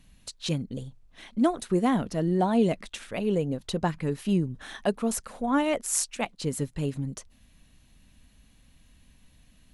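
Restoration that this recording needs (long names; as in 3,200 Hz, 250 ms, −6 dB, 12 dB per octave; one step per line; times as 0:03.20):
clipped peaks rebuilt −11 dBFS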